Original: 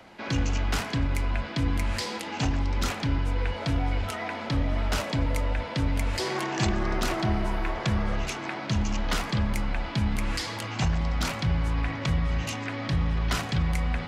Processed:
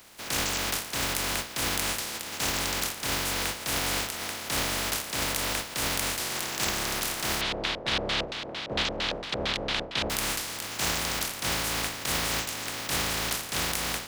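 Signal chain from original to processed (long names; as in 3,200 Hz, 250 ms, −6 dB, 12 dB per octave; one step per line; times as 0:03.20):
compressing power law on the bin magnitudes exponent 0.21
speech leveller within 3 dB 0.5 s
0:07.41–0:10.10: auto-filter low-pass square 4.4 Hz 560–3,600 Hz
level −3.5 dB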